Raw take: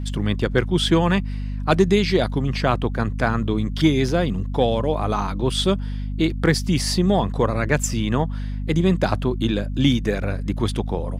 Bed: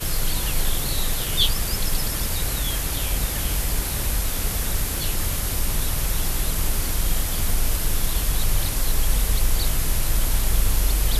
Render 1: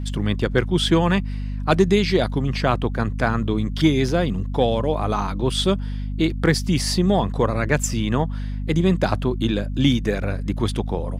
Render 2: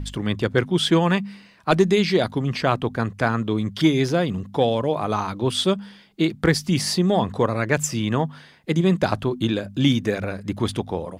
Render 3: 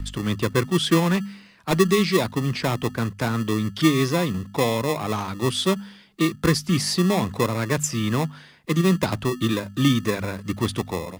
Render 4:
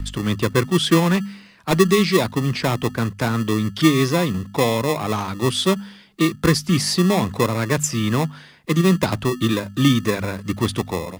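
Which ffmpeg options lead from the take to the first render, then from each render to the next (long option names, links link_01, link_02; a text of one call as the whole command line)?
ffmpeg -i in.wav -af anull out.wav
ffmpeg -i in.wav -af "bandreject=frequency=50:width_type=h:width=4,bandreject=frequency=100:width_type=h:width=4,bandreject=frequency=150:width_type=h:width=4,bandreject=frequency=200:width_type=h:width=4,bandreject=frequency=250:width_type=h:width=4" out.wav
ffmpeg -i in.wav -filter_complex "[0:a]acrossover=split=220|600|4300[link_01][link_02][link_03][link_04];[link_02]acrusher=samples=29:mix=1:aa=0.000001[link_05];[link_03]asoftclip=type=tanh:threshold=-24.5dB[link_06];[link_01][link_05][link_06][link_04]amix=inputs=4:normalize=0" out.wav
ffmpeg -i in.wav -af "volume=3dB" out.wav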